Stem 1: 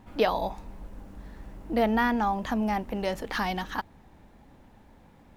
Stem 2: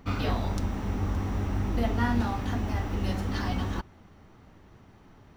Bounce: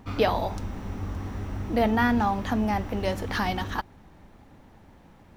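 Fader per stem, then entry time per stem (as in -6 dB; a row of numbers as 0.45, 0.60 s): +1.0, -4.0 dB; 0.00, 0.00 s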